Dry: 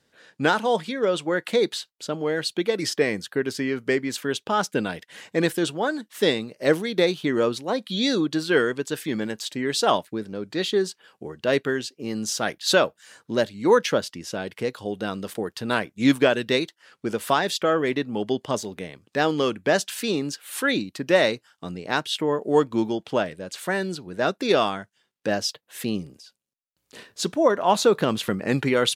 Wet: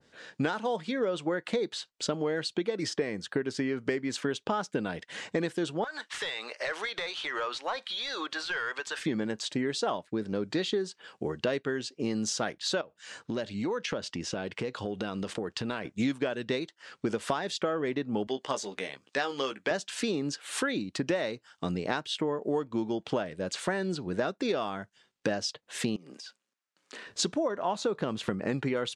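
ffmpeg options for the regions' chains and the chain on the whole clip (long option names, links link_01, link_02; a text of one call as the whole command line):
ffmpeg -i in.wav -filter_complex "[0:a]asettb=1/sr,asplit=3[link_01][link_02][link_03];[link_01]atrim=end=5.844[link_04];[link_02]atrim=start=5.84:end=9.03,asetpts=PTS-STARTPTS,afade=type=in:duration=0.004:curve=qsin,afade=type=out:start_time=3.186:duration=0.004:curve=qsin,highpass=1000,acompressor=threshold=-43dB:ratio=4:attack=3.2:release=140:knee=1:detection=peak,asplit=2[link_05][link_06];[link_06]highpass=frequency=720:poles=1,volume=20dB,asoftclip=type=tanh:threshold=-20.5dB[link_07];[link_05][link_07]amix=inputs=2:normalize=0,lowpass=frequency=3600:poles=1,volume=-6dB[link_08];[link_03]atrim=start=9.026[link_09];[link_04][link_08]acrossfade=duration=0.004:curve1=hsin:curve2=qsin[link_10];[link_10][link_09]acrossfade=duration=0.004:curve1=qsin:curve2=hsin,asettb=1/sr,asplit=3[link_11][link_12][link_13];[link_11]atrim=end=12.814[link_14];[link_12]atrim=start=12.81:end=15.85,asetpts=PTS-STARTPTS,afade=type=in:duration=0.004:curve=qsin,afade=type=out:start_time=3.036:duration=0.004:curve=qsin,lowpass=9000,acompressor=threshold=-33dB:ratio=5:attack=3.2:release=140:knee=1:detection=peak,equalizer=frequency=2700:width_type=o:width=0.39:gain=3[link_15];[link_13]atrim=start=15.846[link_16];[link_14][link_15]acrossfade=duration=0.004:curve1=hsin:curve2=qsin[link_17];[link_17][link_16]acrossfade=duration=0.004:curve1=qsin:curve2=hsin,asettb=1/sr,asplit=3[link_18][link_19][link_20];[link_18]atrim=end=18.274[link_21];[link_19]atrim=start=18.27:end=19.71,asetpts=PTS-STARTPTS,afade=type=in:duration=0.004:curve=qsin,afade=type=out:start_time=1.436:duration=0.004:curve=qsin,highpass=frequency=960:poles=1,asplit=2[link_22][link_23];[link_23]adelay=15,volume=-7.5dB[link_24];[link_22][link_24]amix=inputs=2:normalize=0,atrim=end_sample=63504[link_25];[link_20]atrim=start=19.706[link_26];[link_21][link_25]acrossfade=duration=0.004:curve1=hsin:curve2=qsin[link_27];[link_27][link_26]acrossfade=duration=0.004:curve1=qsin:curve2=hsin,asettb=1/sr,asplit=3[link_28][link_29][link_30];[link_28]atrim=end=25.964[link_31];[link_29]atrim=start=25.96:end=27.07,asetpts=PTS-STARTPTS,afade=type=in:duration=0.004:curve=qsin,afade=type=out:start_time=1.106:duration=0.004:curve=qsin,highpass=frequency=200:width=0.5412,highpass=frequency=200:width=1.3066,equalizer=frequency=1500:width=0.9:gain=8,acompressor=threshold=-44dB:ratio=12:attack=3.2:release=140:knee=1:detection=peak[link_32];[link_30]atrim=start=27.066[link_33];[link_31][link_32]acrossfade=duration=0.004:curve1=hsin:curve2=qsin[link_34];[link_34][link_33]acrossfade=duration=0.004:curve1=qsin:curve2=hsin,lowpass=frequency=8400:width=0.5412,lowpass=frequency=8400:width=1.3066,acompressor=threshold=-30dB:ratio=12,adynamicequalizer=threshold=0.00398:dfrequency=1800:dqfactor=0.7:tfrequency=1800:tqfactor=0.7:attack=5:release=100:ratio=0.375:range=2.5:mode=cutabove:tftype=highshelf,volume=4dB" out.wav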